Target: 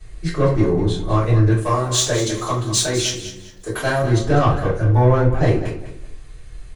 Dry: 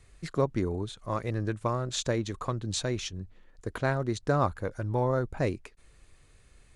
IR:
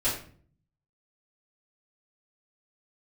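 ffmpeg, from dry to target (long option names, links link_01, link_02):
-filter_complex "[0:a]asettb=1/sr,asplit=3[link_01][link_02][link_03];[link_01]atrim=end=1.514[link_04];[link_02]atrim=start=1.51:end=4.02,asetpts=PTS-STARTPTS,afade=type=in:duration=0.004:curve=qsin,afade=type=out:start_time=2.506:duration=0.004:curve=qsin,aemphasis=mode=production:type=bsi[link_05];[link_03]atrim=start=4.016[link_06];[link_04][link_05]acrossfade=duration=0.004:curve1=hsin:curve2=qsin[link_07];[link_07][link_06]acrossfade=duration=0.004:curve1=qsin:curve2=hsin,asoftclip=type=tanh:threshold=-21.5dB,aecho=1:1:201|402|603:0.251|0.0678|0.0183[link_08];[1:a]atrim=start_sample=2205,asetrate=52920,aresample=44100[link_09];[link_08][link_09]afir=irnorm=-1:irlink=0,volume=4dB"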